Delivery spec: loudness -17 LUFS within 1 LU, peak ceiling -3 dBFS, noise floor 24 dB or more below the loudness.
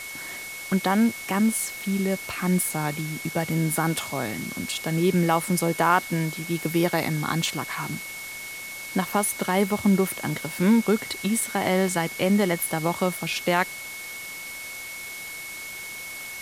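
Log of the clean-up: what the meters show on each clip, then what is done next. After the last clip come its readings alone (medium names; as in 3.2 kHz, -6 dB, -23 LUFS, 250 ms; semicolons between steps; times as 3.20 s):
steady tone 2.2 kHz; tone level -36 dBFS; noise floor -37 dBFS; noise floor target -50 dBFS; loudness -25.5 LUFS; peak level -6.0 dBFS; loudness target -17.0 LUFS
-> band-stop 2.2 kHz, Q 30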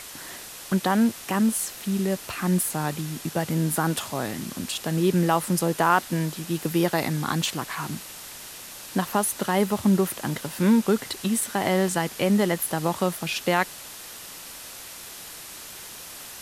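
steady tone not found; noise floor -41 dBFS; noise floor target -49 dBFS
-> noise reduction 8 dB, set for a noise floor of -41 dBFS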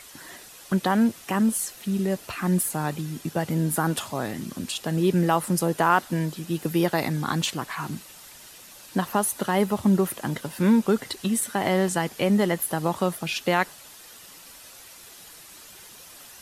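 noise floor -47 dBFS; noise floor target -49 dBFS
-> noise reduction 6 dB, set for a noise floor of -47 dBFS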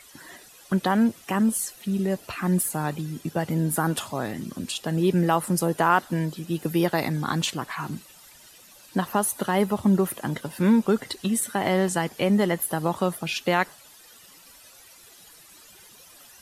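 noise floor -51 dBFS; loudness -25.0 LUFS; peak level -6.5 dBFS; loudness target -17.0 LUFS
-> trim +8 dB; peak limiter -3 dBFS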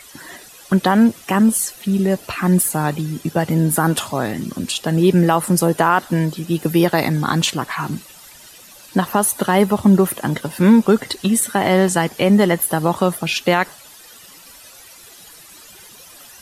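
loudness -17.5 LUFS; peak level -3.0 dBFS; noise floor -43 dBFS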